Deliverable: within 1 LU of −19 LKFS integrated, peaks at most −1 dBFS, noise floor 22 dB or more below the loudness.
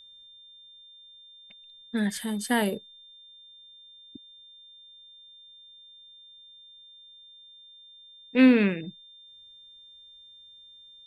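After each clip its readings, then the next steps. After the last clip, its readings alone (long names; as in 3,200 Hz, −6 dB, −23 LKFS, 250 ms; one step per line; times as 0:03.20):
interfering tone 3,600 Hz; level of the tone −49 dBFS; integrated loudness −25.0 LKFS; sample peak −8.5 dBFS; target loudness −19.0 LKFS
→ notch filter 3,600 Hz, Q 30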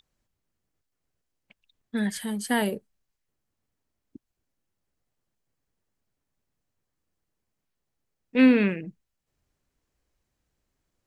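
interfering tone none found; integrated loudness −24.5 LKFS; sample peak −9.0 dBFS; target loudness −19.0 LKFS
→ level +5.5 dB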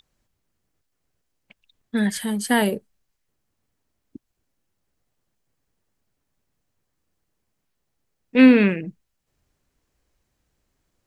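integrated loudness −19.0 LKFS; sample peak −3.5 dBFS; background noise floor −77 dBFS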